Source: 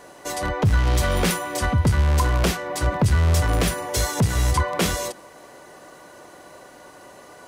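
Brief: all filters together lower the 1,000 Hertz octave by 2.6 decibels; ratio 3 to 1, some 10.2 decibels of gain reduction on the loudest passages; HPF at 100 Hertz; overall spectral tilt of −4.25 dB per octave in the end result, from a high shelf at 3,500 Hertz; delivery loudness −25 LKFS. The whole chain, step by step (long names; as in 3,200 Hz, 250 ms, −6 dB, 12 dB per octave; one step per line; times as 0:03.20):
high-pass filter 100 Hz
parametric band 1,000 Hz −3.5 dB
high-shelf EQ 3,500 Hz +3 dB
downward compressor 3 to 1, threshold −30 dBFS
level +6 dB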